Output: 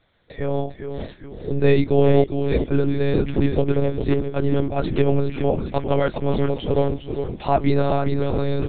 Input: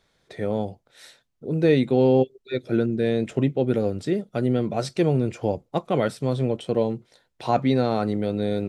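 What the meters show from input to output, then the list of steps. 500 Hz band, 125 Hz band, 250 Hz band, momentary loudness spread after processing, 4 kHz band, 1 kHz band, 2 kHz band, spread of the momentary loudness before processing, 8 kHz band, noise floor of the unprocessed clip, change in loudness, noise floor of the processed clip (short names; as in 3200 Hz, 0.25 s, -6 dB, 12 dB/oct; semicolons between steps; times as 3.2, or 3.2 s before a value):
+2.5 dB, +4.0 dB, +1.0 dB, 11 LU, +0.5 dB, +2.5 dB, +2.5 dB, 10 LU, under -30 dB, -71 dBFS, +2.0 dB, -43 dBFS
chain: on a send: frequency-shifting echo 0.404 s, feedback 45%, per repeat -74 Hz, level -7 dB; on the sum: monotone LPC vocoder at 8 kHz 140 Hz; gain +3 dB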